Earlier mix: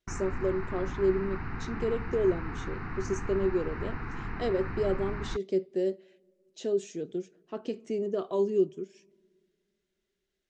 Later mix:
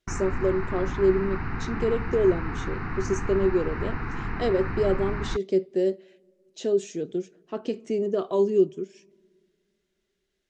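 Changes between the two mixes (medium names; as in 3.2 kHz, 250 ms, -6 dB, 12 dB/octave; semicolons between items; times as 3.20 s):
speech +5.0 dB; background +5.5 dB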